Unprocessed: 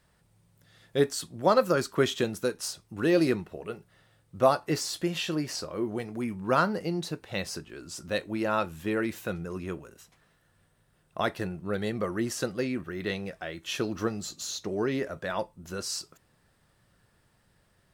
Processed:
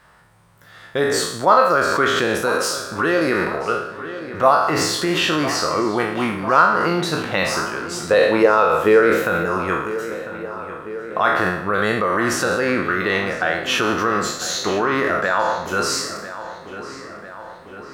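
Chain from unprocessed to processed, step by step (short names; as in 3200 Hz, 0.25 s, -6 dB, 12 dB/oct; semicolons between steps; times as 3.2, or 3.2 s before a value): spectral trails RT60 0.71 s; bell 1200 Hz +14 dB 1.9 oct; in parallel at +2 dB: negative-ratio compressor -25 dBFS, ratio -1; 8.05–9.23 on the sum: bell 460 Hz +15 dB 0.41 oct; on a send: darkening echo 0.999 s, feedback 63%, low-pass 3400 Hz, level -13 dB; on the sum: gain -3.5 dB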